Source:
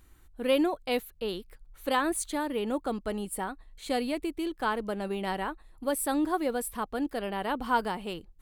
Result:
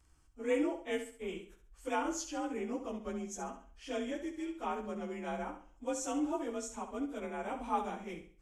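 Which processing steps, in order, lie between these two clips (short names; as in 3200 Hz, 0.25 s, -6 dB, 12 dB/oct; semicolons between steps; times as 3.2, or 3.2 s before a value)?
inharmonic rescaling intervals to 90%; flutter echo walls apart 11.5 m, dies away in 0.44 s; gain -6 dB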